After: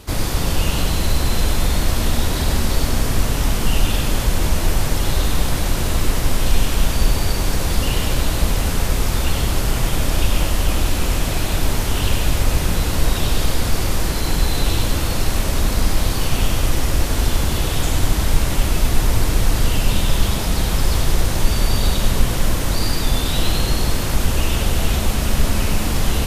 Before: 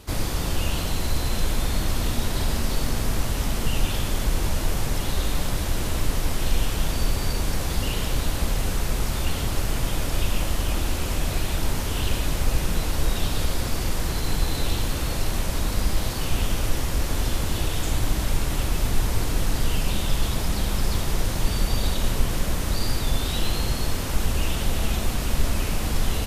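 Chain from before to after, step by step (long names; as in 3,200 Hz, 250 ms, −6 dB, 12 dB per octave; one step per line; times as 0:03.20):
echo with a time of its own for lows and highs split 1,100 Hz, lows 245 ms, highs 98 ms, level −7 dB
level +5 dB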